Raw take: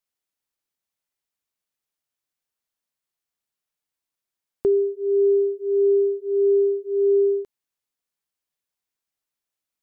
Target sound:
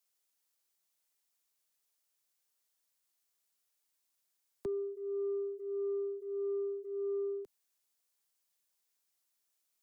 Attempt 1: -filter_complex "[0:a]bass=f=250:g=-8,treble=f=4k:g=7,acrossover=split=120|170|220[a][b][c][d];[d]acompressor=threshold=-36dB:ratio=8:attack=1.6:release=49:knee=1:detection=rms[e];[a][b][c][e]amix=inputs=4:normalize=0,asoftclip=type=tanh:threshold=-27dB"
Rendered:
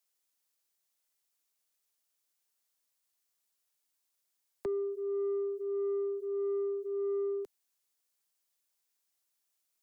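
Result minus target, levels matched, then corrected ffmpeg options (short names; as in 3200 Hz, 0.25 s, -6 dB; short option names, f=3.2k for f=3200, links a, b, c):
compressor: peak gain reduction -9 dB
-filter_complex "[0:a]bass=f=250:g=-8,treble=f=4k:g=7,acrossover=split=120|170|220[a][b][c][d];[d]acompressor=threshold=-46dB:ratio=8:attack=1.6:release=49:knee=1:detection=rms[e];[a][b][c][e]amix=inputs=4:normalize=0,asoftclip=type=tanh:threshold=-27dB"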